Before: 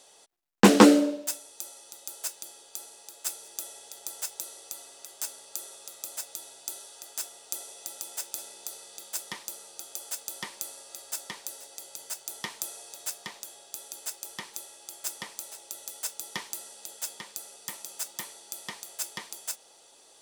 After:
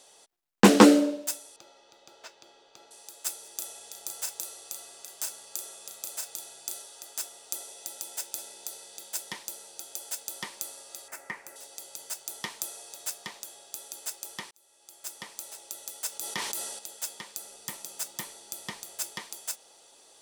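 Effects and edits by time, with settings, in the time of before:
1.56–2.91 air absorption 220 m
3.56–6.82 doubler 34 ms -6 dB
7.69–10.31 notch 1200 Hz
11.08–11.56 resonant high shelf 2700 Hz -9 dB, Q 3
14.51–15.52 fade in
16.09–16.79 sustainer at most 38 dB/s
17.41–19.14 low shelf 240 Hz +8 dB

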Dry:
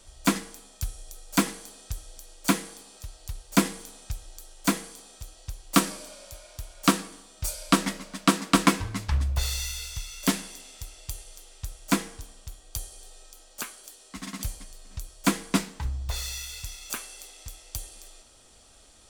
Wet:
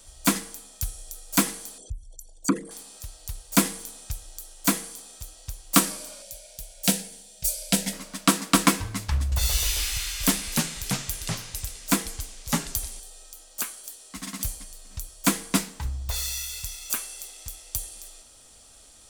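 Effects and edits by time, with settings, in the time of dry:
1.78–2.71 formant sharpening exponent 3
6.22–7.93 fixed phaser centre 310 Hz, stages 6
9.22–13 echoes that change speed 98 ms, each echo -3 st, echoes 3
whole clip: high shelf 7300 Hz +10.5 dB; notch 370 Hz, Q 12

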